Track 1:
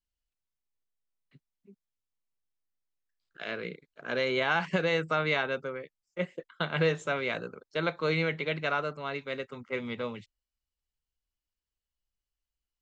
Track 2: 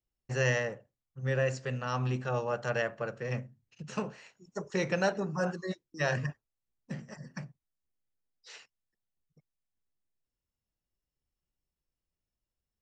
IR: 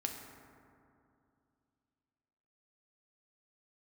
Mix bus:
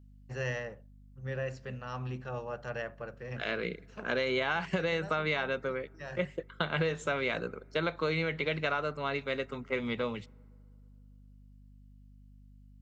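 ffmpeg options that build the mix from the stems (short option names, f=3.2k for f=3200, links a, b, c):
-filter_complex "[0:a]acompressor=threshold=-30dB:ratio=6,volume=2.5dB,asplit=3[a][b][c];[b]volume=-23dB[d];[1:a]lowpass=4.9k,volume=-6.5dB[e];[c]apad=whole_len=565280[f];[e][f]sidechaincompress=threshold=-43dB:ratio=3:attack=25:release=957[g];[2:a]atrim=start_sample=2205[h];[d][h]afir=irnorm=-1:irlink=0[i];[a][g][i]amix=inputs=3:normalize=0,aeval=exprs='val(0)+0.002*(sin(2*PI*50*n/s)+sin(2*PI*2*50*n/s)/2+sin(2*PI*3*50*n/s)/3+sin(2*PI*4*50*n/s)/4+sin(2*PI*5*50*n/s)/5)':c=same"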